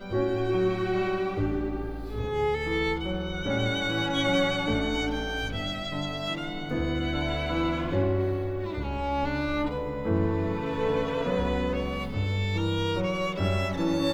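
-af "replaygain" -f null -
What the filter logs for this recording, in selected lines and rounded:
track_gain = +10.2 dB
track_peak = 0.167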